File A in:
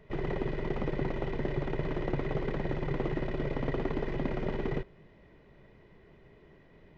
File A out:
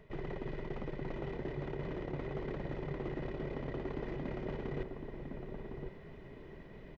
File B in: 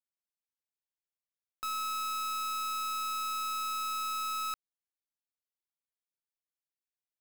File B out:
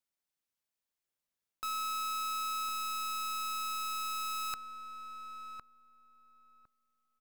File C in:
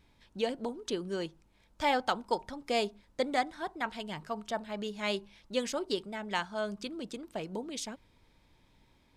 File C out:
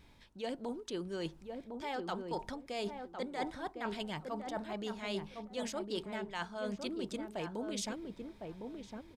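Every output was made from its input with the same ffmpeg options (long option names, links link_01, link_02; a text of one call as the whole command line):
ffmpeg -i in.wav -filter_complex "[0:a]areverse,acompressor=threshold=-40dB:ratio=12,areverse,asplit=2[link_01][link_02];[link_02]adelay=1057,lowpass=frequency=880:poles=1,volume=-4dB,asplit=2[link_03][link_04];[link_04]adelay=1057,lowpass=frequency=880:poles=1,volume=0.22,asplit=2[link_05][link_06];[link_06]adelay=1057,lowpass=frequency=880:poles=1,volume=0.22[link_07];[link_01][link_03][link_05][link_07]amix=inputs=4:normalize=0,volume=4dB" out.wav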